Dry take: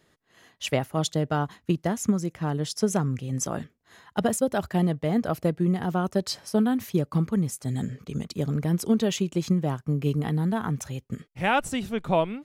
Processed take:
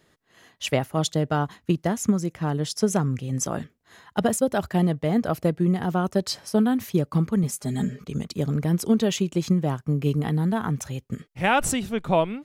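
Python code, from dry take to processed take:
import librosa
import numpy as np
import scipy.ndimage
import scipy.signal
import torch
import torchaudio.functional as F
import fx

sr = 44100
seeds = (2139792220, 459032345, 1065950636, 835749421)

y = fx.comb(x, sr, ms=4.9, depth=0.78, at=(7.43, 8.04))
y = fx.pre_swell(y, sr, db_per_s=25.0, at=(11.44, 11.89))
y = F.gain(torch.from_numpy(y), 2.0).numpy()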